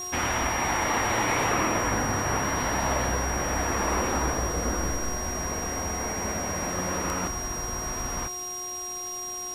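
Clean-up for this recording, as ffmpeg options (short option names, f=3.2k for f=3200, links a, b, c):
-af "adeclick=t=4,bandreject=f=361.5:t=h:w=4,bandreject=f=723:t=h:w=4,bandreject=f=1.0845k:t=h:w=4,bandreject=f=5.7k:w=30,afwtdn=0.0056"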